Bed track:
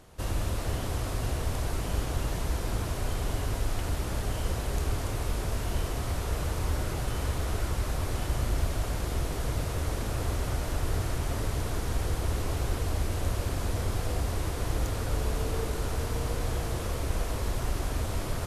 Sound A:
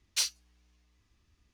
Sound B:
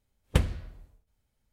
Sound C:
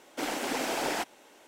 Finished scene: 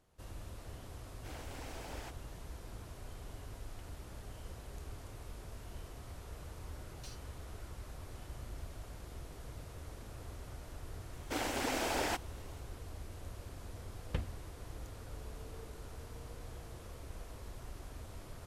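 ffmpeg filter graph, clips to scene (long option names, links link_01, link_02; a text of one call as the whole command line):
ffmpeg -i bed.wav -i cue0.wav -i cue1.wav -i cue2.wav -filter_complex "[3:a]asplit=2[link_01][link_02];[0:a]volume=-17.5dB[link_03];[1:a]acompressor=threshold=-35dB:ratio=6:attack=3.2:release=140:knee=1:detection=peak[link_04];[2:a]lowpass=4600[link_05];[link_01]atrim=end=1.47,asetpts=PTS-STARTPTS,volume=-18dB,afade=type=in:duration=0.004:curve=hsin,afade=type=out:start_time=1.466:duration=0.004:curve=hsin,adelay=1070[link_06];[link_04]atrim=end=1.53,asetpts=PTS-STARTPTS,volume=-14.5dB,afade=type=in:duration=0.004:curve=hsin,afade=type=out:start_time=1.526:duration=0.004:curve=hsin,adelay=6870[link_07];[link_02]atrim=end=1.47,asetpts=PTS-STARTPTS,volume=-4dB,afade=type=in:duration=0.004:curve=hsin,afade=type=out:start_time=1.466:duration=0.004:curve=hsin,adelay=11130[link_08];[link_05]atrim=end=1.52,asetpts=PTS-STARTPTS,volume=-13.5dB,afade=type=in:duration=0.004:curve=hsin,afade=type=out:start_time=1.516:duration=0.004:curve=hsin,adelay=13790[link_09];[link_03][link_06][link_07][link_08][link_09]amix=inputs=5:normalize=0" out.wav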